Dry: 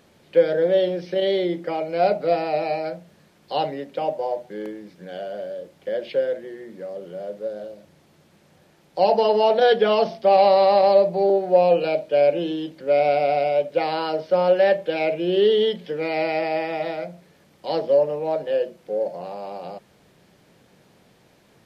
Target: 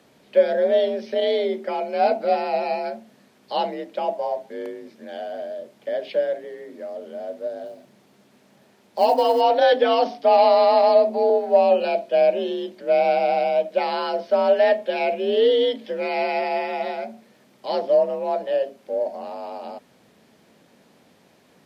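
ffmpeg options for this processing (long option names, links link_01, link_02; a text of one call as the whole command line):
ffmpeg -i in.wav -filter_complex "[0:a]asettb=1/sr,asplit=3[link_01][link_02][link_03];[link_01]atrim=end=7.664[link_04];[link_02]atrim=start=7.66:end=9.41,asetpts=PTS-STARTPTS,afade=type=in:duration=0.004:curve=qsin,afade=type=out:start_time=1.746:duration=0.004:curve=qsin,acrusher=bits=8:mode=log:mix=0:aa=0.000001[link_05];[link_03]atrim=start=9.406[link_06];[link_04][link_05]acrossfade=duration=0.004:curve1=hsin:curve2=qsin[link_07];[link_07][link_06]acrossfade=duration=0.004:curve1=qsin:curve2=hsin,afreqshift=48" out.wav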